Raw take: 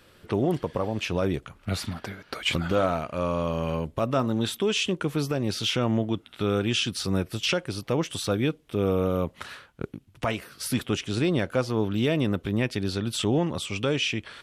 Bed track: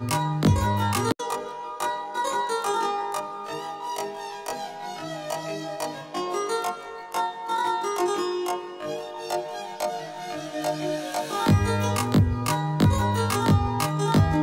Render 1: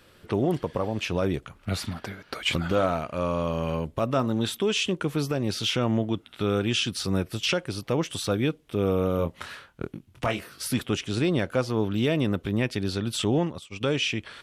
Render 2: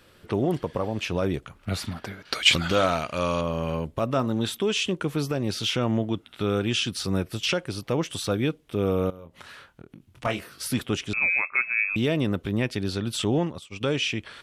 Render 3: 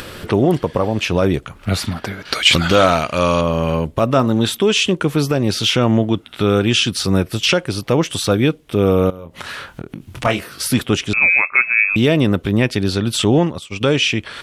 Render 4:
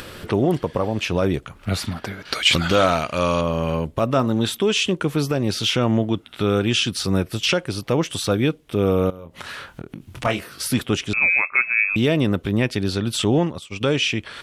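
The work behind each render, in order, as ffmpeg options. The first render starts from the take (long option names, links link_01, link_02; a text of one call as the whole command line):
ffmpeg -i in.wav -filter_complex "[0:a]asettb=1/sr,asplit=3[link_01][link_02][link_03];[link_01]atrim=end=9.164[link_04];[link_02]atrim=start=9.16:end=10.63,asetpts=PTS-STARTPTS,afade=type=in:duration=0.004:curve=qsin,afade=type=out:start_time=1.466:duration=0.004:curve=qsin,asplit=2[link_05][link_06];[link_06]adelay=24,volume=-7dB[link_07];[link_05][link_07]amix=inputs=2:normalize=0,atrim=end_sample=64827[link_08];[link_03]atrim=start=10.626[link_09];[link_04][link_08]acrossfade=duration=0.004:curve1=hsin:curve2=qsin[link_10];[link_10][link_09]acrossfade=duration=0.004:curve1=qsin:curve2=hsin,asplit=3[link_11][link_12][link_13];[link_11]afade=type=out:start_time=13.35:duration=0.02[link_14];[link_12]agate=range=-33dB:threshold=-25dB:ratio=3:release=100:detection=peak,afade=type=in:start_time=13.35:duration=0.02,afade=type=out:start_time=13.8:duration=0.02[link_15];[link_13]afade=type=in:start_time=13.8:duration=0.02[link_16];[link_14][link_15][link_16]amix=inputs=3:normalize=0" out.wav
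ffmpeg -i in.wav -filter_complex "[0:a]asettb=1/sr,asplit=3[link_01][link_02][link_03];[link_01]atrim=end=2.254[link_04];[link_02]atrim=start=2.25:end=3.41,asetpts=PTS-STARTPTS,afade=type=in:duration=0.004:curve=qsin,afade=type=out:start_time=1.156:duration=0.004:curve=qsin,equalizer=frequency=5000:width=0.41:gain=11.5[link_05];[link_03]atrim=start=3.406[link_06];[link_04][link_05]acrossfade=duration=0.004:curve1=hsin:curve2=qsin[link_07];[link_07][link_06]acrossfade=duration=0.004:curve1=qsin:curve2=hsin,asettb=1/sr,asplit=3[link_08][link_09][link_10];[link_08]atrim=end=9.104[link_11];[link_09]atrim=start=9.1:end=10.25,asetpts=PTS-STARTPTS,afade=type=in:duration=0.004:curve=qsin,afade=type=out:start_time=1.146:duration=0.004:curve=qsin,acompressor=threshold=-40dB:ratio=10:attack=3.2:release=140:knee=1:detection=peak[link_12];[link_10]atrim=start=10.246[link_13];[link_11][link_12]acrossfade=duration=0.004:curve1=hsin:curve2=qsin[link_14];[link_14][link_13]acrossfade=duration=0.004:curve1=qsin:curve2=hsin,asettb=1/sr,asplit=3[link_15][link_16][link_17];[link_15]atrim=end=11.134[link_18];[link_16]atrim=start=11.13:end=11.96,asetpts=PTS-STARTPTS,afade=type=in:duration=0.004:curve=qsin,afade=type=out:start_time=0.826:duration=0.004:curve=qsin,lowpass=frequency=2300:width_type=q:width=0.5098,lowpass=frequency=2300:width_type=q:width=0.6013,lowpass=frequency=2300:width_type=q:width=0.9,lowpass=frequency=2300:width_type=q:width=2.563,afreqshift=-2700[link_19];[link_17]atrim=start=11.956[link_20];[link_18][link_19]acrossfade=duration=0.004:curve1=hsin:curve2=qsin[link_21];[link_21][link_20]acrossfade=duration=0.004:curve1=qsin:curve2=hsin" out.wav
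ffmpeg -i in.wav -af "acompressor=mode=upward:threshold=-31dB:ratio=2.5,alimiter=level_in=10dB:limit=-1dB:release=50:level=0:latency=1" out.wav
ffmpeg -i in.wav -af "volume=-4.5dB" out.wav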